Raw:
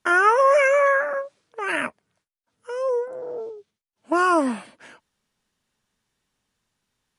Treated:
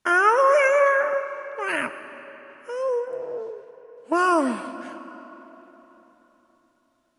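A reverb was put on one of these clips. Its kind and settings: digital reverb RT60 3.9 s, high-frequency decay 0.75×, pre-delay 45 ms, DRR 11 dB; gain -1 dB

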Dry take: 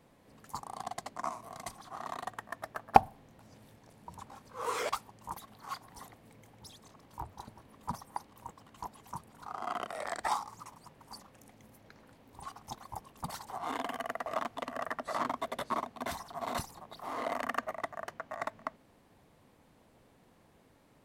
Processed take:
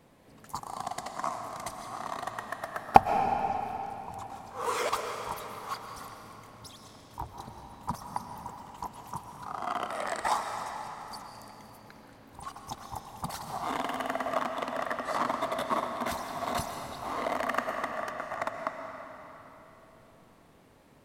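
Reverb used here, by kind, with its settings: digital reverb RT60 3.5 s, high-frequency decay 0.85×, pre-delay 85 ms, DRR 4 dB; gain +3.5 dB

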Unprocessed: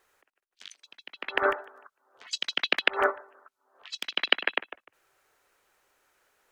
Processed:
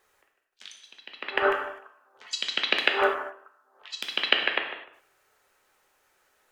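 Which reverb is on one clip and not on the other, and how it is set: non-linear reverb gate 0.28 s falling, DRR 2.5 dB

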